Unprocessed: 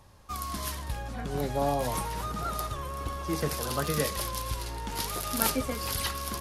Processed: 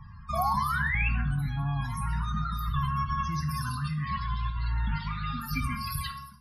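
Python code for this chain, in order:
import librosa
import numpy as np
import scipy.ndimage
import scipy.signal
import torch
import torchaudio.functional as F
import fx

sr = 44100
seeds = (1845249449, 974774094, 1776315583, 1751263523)

y = fx.fade_out_tail(x, sr, length_s=1.24)
y = scipy.signal.sosfilt(scipy.signal.cheby1(2, 1.0, [170.0, 1300.0], 'bandstop', fs=sr, output='sos'), y)
y = fx.low_shelf(y, sr, hz=330.0, db=2.5)
y = fx.over_compress(y, sr, threshold_db=-37.0, ratio=-1.0)
y = fx.spec_paint(y, sr, seeds[0], shape='rise', start_s=0.33, length_s=0.76, low_hz=630.0, high_hz=2800.0, level_db=-38.0)
y = fx.lowpass(y, sr, hz=3900.0, slope=12, at=(3.91, 5.42))
y = fx.spec_topn(y, sr, count=32)
y = fx.rev_fdn(y, sr, rt60_s=0.49, lf_ratio=0.8, hf_ratio=0.9, size_ms=40.0, drr_db=3.5)
y = y * librosa.db_to_amplitude(6.5)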